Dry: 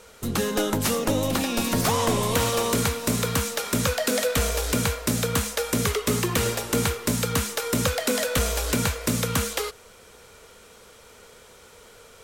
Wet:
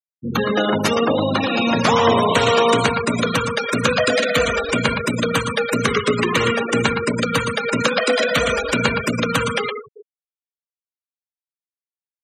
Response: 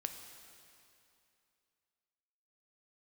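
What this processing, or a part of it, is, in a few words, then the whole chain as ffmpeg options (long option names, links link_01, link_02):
PA in a hall: -filter_complex "[0:a]highpass=120,equalizer=frequency=2200:width_type=o:width=2.9:gain=6,aecho=1:1:116:0.562[link_01];[1:a]atrim=start_sample=2205[link_02];[link_01][link_02]afir=irnorm=-1:irlink=0,asettb=1/sr,asplit=3[link_03][link_04][link_05];[link_03]atrim=end=7.824[link_06];[link_04]atrim=start=7.82:end=8.26,asetpts=PTS-STARTPTS,afade=type=in:duration=0.004:curve=qsin,afade=type=out:start_time=0.436:duration=0.004:curve=qsin,highpass=200[link_07];[link_05]atrim=start=8.256[link_08];[link_06][link_07]acrossfade=duration=0.004:curve1=hsin:curve2=qsin[link_09];[link_09][link_08]acrossfade=duration=0.004:curve1=qsin:curve2=hsin,afftfilt=real='re*gte(hypot(re,im),0.0891)':imag='im*gte(hypot(re,im),0.0891)':win_size=1024:overlap=0.75,volume=5.5dB"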